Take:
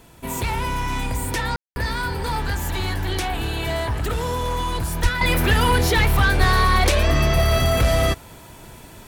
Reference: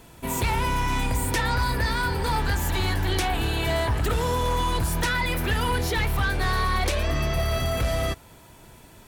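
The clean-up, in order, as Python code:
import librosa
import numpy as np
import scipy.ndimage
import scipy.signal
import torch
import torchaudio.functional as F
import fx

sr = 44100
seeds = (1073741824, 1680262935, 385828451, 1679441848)

y = fx.fix_deplosive(x, sr, at_s=(5.02, 6.39))
y = fx.fix_ambience(y, sr, seeds[0], print_start_s=8.18, print_end_s=8.68, start_s=1.56, end_s=1.76)
y = fx.fix_level(y, sr, at_s=5.21, step_db=-7.0)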